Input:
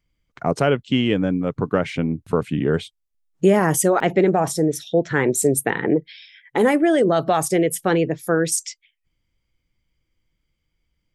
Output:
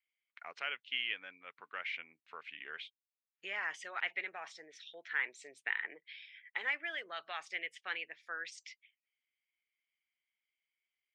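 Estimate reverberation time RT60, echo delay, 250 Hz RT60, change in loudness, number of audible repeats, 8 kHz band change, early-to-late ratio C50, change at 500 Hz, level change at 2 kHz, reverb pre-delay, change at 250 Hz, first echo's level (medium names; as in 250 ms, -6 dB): no reverb, no echo, no reverb, -19.5 dB, no echo, -33.0 dB, no reverb, -34.5 dB, -9.0 dB, no reverb, under -40 dB, no echo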